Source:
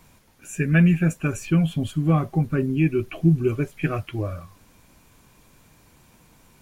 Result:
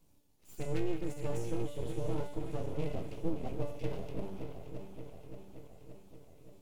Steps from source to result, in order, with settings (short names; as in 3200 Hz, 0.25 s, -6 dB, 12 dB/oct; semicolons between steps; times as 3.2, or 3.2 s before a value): regenerating reverse delay 0.287 s, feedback 79%, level -9 dB; low shelf 330 Hz +5.5 dB; resonator 290 Hz, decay 0.82 s, mix 90%; full-wave rectifier; bell 1600 Hz -12 dB 1.3 oct; gain +1.5 dB